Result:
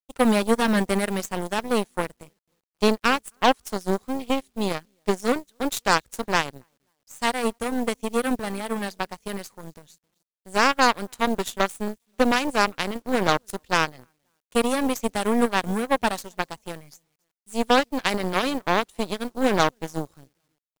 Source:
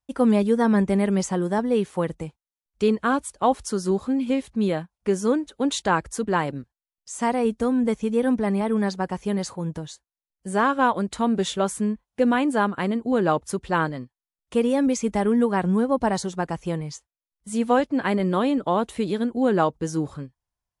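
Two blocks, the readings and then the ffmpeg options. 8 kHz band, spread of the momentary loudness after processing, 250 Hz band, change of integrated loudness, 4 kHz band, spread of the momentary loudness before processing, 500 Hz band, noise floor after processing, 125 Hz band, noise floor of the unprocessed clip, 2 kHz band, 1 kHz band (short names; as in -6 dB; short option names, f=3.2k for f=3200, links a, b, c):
+1.0 dB, 11 LU, -4.5 dB, -1.0 dB, +7.0 dB, 9 LU, -2.0 dB, -81 dBFS, -5.5 dB, under -85 dBFS, +4.5 dB, +1.0 dB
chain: -filter_complex "[0:a]asplit=2[a][b];[b]adelay=266,lowpass=f=3.4k:p=1,volume=-24dB,asplit=2[c][d];[d]adelay=266,lowpass=f=3.4k:p=1,volume=0.41,asplit=2[e][f];[f]adelay=266,lowpass=f=3.4k:p=1,volume=0.41[g];[c][e][g]amix=inputs=3:normalize=0[h];[a][h]amix=inputs=2:normalize=0,acrusher=bits=8:mix=0:aa=0.000001,aeval=exprs='0.447*(cos(1*acos(clip(val(0)/0.447,-1,1)))-cos(1*PI/2))+0.0708*(cos(2*acos(clip(val(0)/0.447,-1,1)))-cos(2*PI/2))+0.00631*(cos(3*acos(clip(val(0)/0.447,-1,1)))-cos(3*PI/2))+0.0251*(cos(6*acos(clip(val(0)/0.447,-1,1)))-cos(6*PI/2))+0.0562*(cos(7*acos(clip(val(0)/0.447,-1,1)))-cos(7*PI/2))':c=same,highshelf=f=2.9k:g=10.5"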